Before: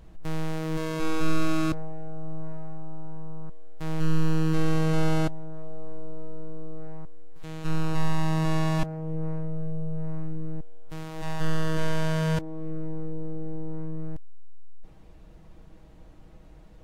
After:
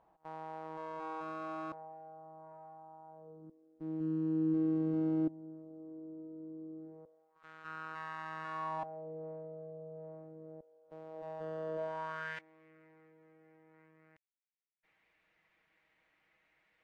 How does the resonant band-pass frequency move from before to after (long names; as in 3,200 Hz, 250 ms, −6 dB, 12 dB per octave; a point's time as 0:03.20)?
resonant band-pass, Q 3.8
0:03.06 860 Hz
0:03.47 310 Hz
0:06.85 310 Hz
0:07.47 1,400 Hz
0:08.47 1,400 Hz
0:09.08 570 Hz
0:11.76 570 Hz
0:12.40 2,100 Hz